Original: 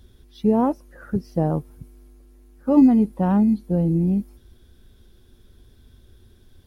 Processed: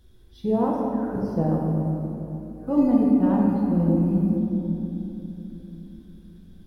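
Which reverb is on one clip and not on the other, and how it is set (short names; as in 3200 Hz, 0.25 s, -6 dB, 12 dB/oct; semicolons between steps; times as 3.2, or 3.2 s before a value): shoebox room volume 180 m³, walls hard, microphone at 0.67 m; gain -7 dB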